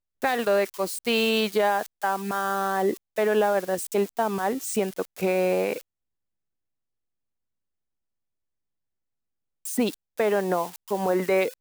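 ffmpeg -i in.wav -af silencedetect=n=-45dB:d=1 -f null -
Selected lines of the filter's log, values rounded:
silence_start: 5.81
silence_end: 9.65 | silence_duration: 3.84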